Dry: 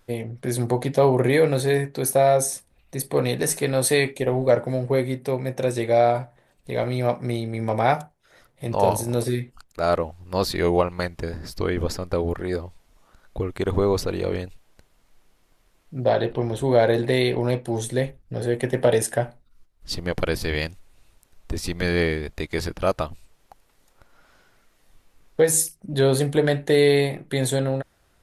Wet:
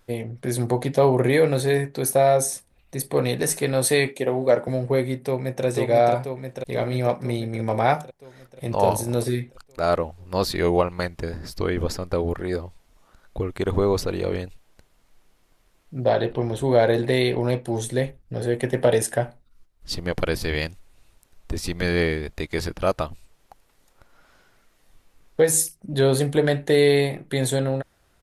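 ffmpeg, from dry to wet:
-filter_complex "[0:a]asettb=1/sr,asplit=3[a][b][c];[a]atrim=end=4.094[d];[b]atrim=start=4.09:end=4.68,asetpts=PTS-STARTPTS,afade=t=in:d=0.004:c=qsin,afade=t=out:st=0.586:d=0.004:c=qsin,highpass=170[e];[c]atrim=start=4.676[f];[d][e]acrossfade=d=0.004:c1=hsin:c2=qsin[g];[g][f]acrossfade=d=0.004:c1=qsin:c2=hsin,asplit=2[h][i];[i]afade=t=in:st=5.25:d=0.01,afade=t=out:st=5.65:d=0.01,aecho=0:1:490|980|1470|1960|2450|2940|3430|3920|4410|4900|5390:0.749894|0.487431|0.31683|0.20594|0.133861|0.0870095|0.0565562|0.0367615|0.023895|0.0155317|0.0100956[j];[h][j]amix=inputs=2:normalize=0"

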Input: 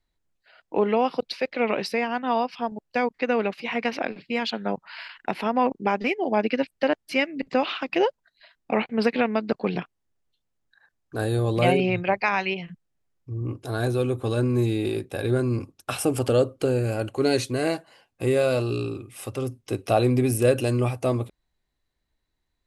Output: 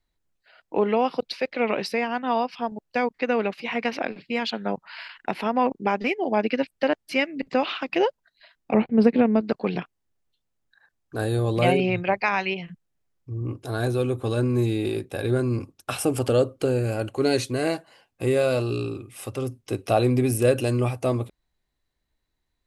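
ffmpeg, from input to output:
-filter_complex "[0:a]asettb=1/sr,asplit=3[a][b][c];[a]atrim=end=8.744[d];[b]atrim=start=8.74:end=9.41,asetpts=PTS-STARTPTS,afade=t=in:d=0.004:c=qsin,afade=t=out:st=0.666:d=0.004:c=qsin,tiltshelf=f=690:g=9[e];[c]atrim=start=9.406[f];[d][e]acrossfade=d=0.004:c1=hsin:c2=qsin[g];[g][f]acrossfade=d=0.004:c1=qsin:c2=hsin"

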